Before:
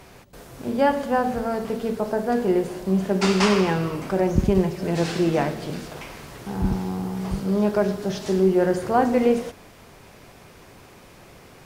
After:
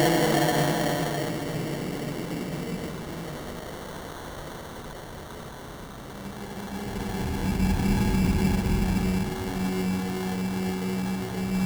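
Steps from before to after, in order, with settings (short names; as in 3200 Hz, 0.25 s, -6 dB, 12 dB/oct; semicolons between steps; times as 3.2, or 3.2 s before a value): Paulstretch 6.4×, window 0.50 s, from 5.38; sample-rate reducer 2500 Hz, jitter 0%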